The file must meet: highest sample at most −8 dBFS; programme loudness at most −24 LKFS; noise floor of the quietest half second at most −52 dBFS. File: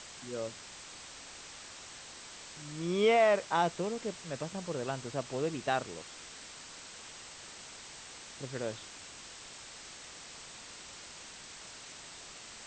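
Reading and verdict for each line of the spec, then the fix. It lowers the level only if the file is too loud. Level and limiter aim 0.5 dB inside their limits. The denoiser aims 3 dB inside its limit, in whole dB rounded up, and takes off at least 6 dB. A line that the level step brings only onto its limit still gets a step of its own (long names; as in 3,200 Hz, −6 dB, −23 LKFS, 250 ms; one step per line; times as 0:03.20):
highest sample −15.5 dBFS: in spec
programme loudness −37.0 LKFS: in spec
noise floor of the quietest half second −49 dBFS: out of spec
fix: broadband denoise 6 dB, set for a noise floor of −49 dBFS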